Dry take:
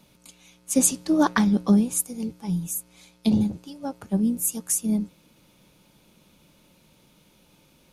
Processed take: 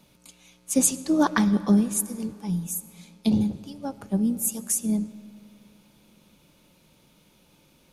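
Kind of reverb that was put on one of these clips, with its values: algorithmic reverb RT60 2.7 s, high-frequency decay 0.6×, pre-delay 45 ms, DRR 16 dB; trim -1 dB

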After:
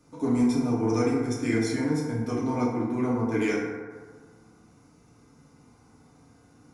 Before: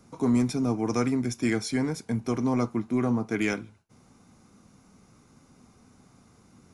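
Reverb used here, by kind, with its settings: FDN reverb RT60 1.6 s, low-frequency decay 0.75×, high-frequency decay 0.35×, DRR -6 dB; trim -6.5 dB

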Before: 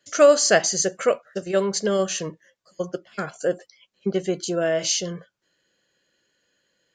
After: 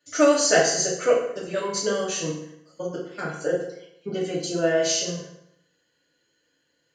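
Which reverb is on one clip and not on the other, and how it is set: FDN reverb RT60 0.77 s, low-frequency decay 1×, high-frequency decay 0.8×, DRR -6 dB; trim -7 dB

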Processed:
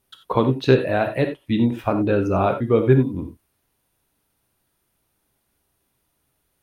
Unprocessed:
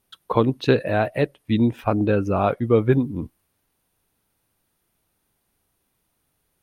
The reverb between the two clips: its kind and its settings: gated-style reverb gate 110 ms flat, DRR 5.5 dB

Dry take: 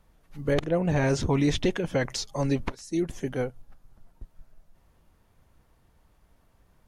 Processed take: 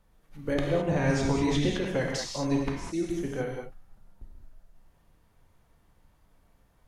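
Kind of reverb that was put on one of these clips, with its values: gated-style reverb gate 240 ms flat, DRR -1 dB; trim -4.5 dB

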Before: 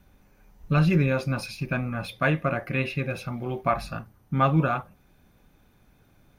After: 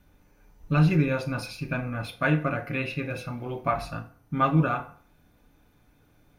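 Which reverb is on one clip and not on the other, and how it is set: FDN reverb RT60 0.48 s, low-frequency decay 0.8×, high-frequency decay 0.7×, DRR 5 dB; trim -2.5 dB

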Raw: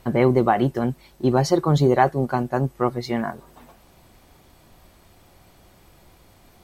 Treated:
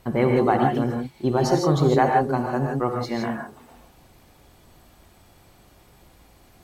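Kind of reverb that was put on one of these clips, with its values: gated-style reverb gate 180 ms rising, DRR 1 dB; trim -3 dB

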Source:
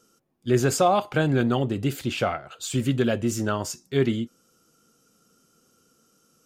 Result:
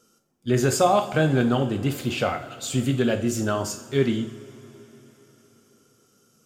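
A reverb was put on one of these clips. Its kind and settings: two-slope reverb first 0.49 s, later 4.1 s, from -18 dB, DRR 6 dB

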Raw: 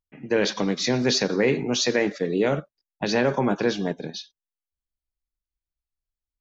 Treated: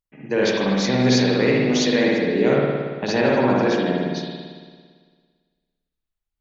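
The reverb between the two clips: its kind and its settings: spring tank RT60 1.7 s, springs 56 ms, chirp 25 ms, DRR -4 dB; trim -1 dB

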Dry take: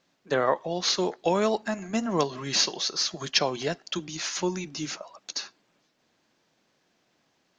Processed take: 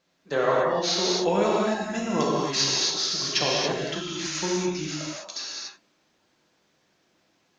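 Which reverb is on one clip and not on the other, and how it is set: gated-style reverb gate 310 ms flat, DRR -5 dB; trim -3.5 dB

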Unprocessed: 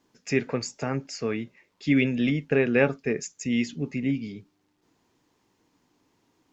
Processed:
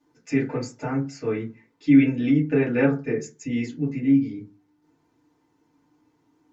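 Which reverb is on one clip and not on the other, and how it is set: FDN reverb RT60 0.3 s, low-frequency decay 1.25×, high-frequency decay 0.35×, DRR -7.5 dB; trim -9 dB

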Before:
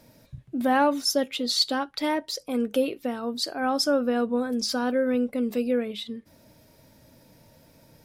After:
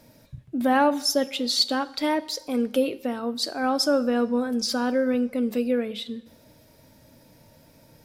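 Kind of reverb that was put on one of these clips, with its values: two-slope reverb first 0.75 s, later 2.6 s, from -18 dB, DRR 15.5 dB; trim +1 dB

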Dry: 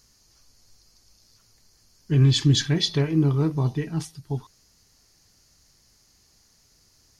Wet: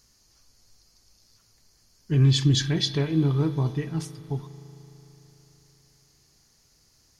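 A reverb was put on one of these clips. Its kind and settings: spring tank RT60 3.8 s, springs 37 ms, chirp 30 ms, DRR 13.5 dB; trim -2 dB

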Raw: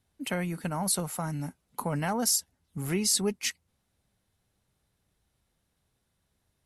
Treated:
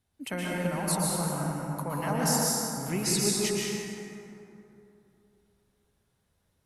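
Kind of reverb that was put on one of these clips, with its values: plate-style reverb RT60 2.9 s, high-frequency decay 0.45×, pre-delay 105 ms, DRR -4.5 dB; trim -3.5 dB

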